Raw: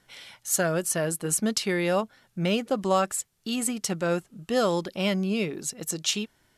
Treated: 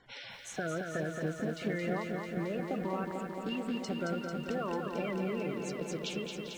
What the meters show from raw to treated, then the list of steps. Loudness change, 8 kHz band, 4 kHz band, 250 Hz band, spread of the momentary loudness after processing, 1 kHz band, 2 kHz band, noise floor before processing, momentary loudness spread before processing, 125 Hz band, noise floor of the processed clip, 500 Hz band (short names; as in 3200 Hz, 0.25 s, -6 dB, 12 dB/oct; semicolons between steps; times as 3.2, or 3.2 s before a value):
-9.0 dB, -20.5 dB, -12.5 dB, -7.0 dB, 4 LU, -8.5 dB, -7.0 dB, -68 dBFS, 7 LU, -6.5 dB, -47 dBFS, -8.5 dB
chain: bin magnitudes rounded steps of 30 dB; treble ducked by the level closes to 2400 Hz, closed at -23.5 dBFS; high shelf 5300 Hz -7.5 dB; limiter -20.5 dBFS, peak gain reduction 8.5 dB; compressor 3:1, threshold -39 dBFS, peak gain reduction 10.5 dB; air absorption 64 m; on a send: delay with a stepping band-pass 0.197 s, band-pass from 1600 Hz, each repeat 1.4 oct, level -8.5 dB; on the sum: lo-fi delay 0.222 s, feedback 80%, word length 11-bit, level -5 dB; gain +2.5 dB